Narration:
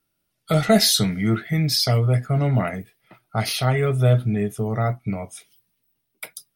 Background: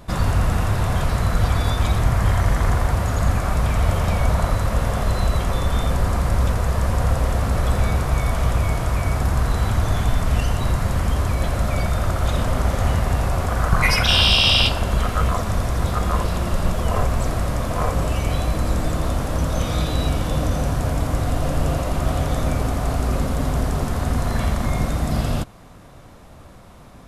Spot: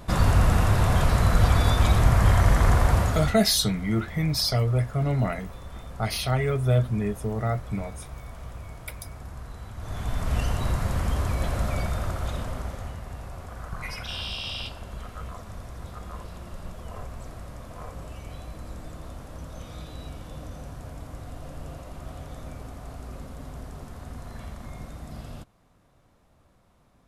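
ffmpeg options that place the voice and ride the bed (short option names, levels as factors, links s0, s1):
-filter_complex "[0:a]adelay=2650,volume=0.596[s0];[1:a]volume=5.01,afade=t=out:st=2.99:d=0.39:silence=0.105925,afade=t=in:st=9.76:d=0.65:silence=0.188365,afade=t=out:st=11.63:d=1.31:silence=0.237137[s1];[s0][s1]amix=inputs=2:normalize=0"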